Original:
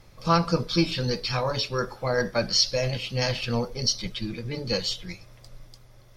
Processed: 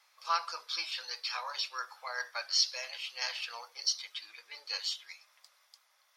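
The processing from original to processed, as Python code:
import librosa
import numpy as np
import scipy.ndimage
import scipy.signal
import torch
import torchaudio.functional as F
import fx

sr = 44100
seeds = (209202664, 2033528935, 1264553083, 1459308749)

y = scipy.signal.sosfilt(scipy.signal.butter(4, 910.0, 'highpass', fs=sr, output='sos'), x)
y = F.gain(torch.from_numpy(y), -6.0).numpy()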